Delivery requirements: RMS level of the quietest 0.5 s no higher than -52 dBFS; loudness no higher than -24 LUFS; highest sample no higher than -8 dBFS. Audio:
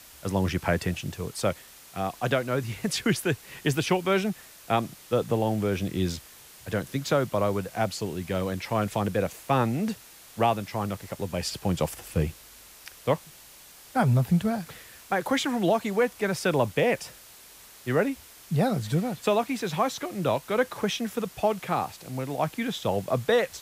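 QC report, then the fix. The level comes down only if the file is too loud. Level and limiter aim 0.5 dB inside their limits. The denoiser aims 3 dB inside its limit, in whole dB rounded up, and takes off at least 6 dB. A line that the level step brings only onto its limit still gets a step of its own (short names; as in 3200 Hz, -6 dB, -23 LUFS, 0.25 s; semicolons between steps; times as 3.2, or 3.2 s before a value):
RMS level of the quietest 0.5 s -50 dBFS: fail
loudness -27.5 LUFS: OK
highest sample -11.5 dBFS: OK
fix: denoiser 6 dB, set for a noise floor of -50 dBFS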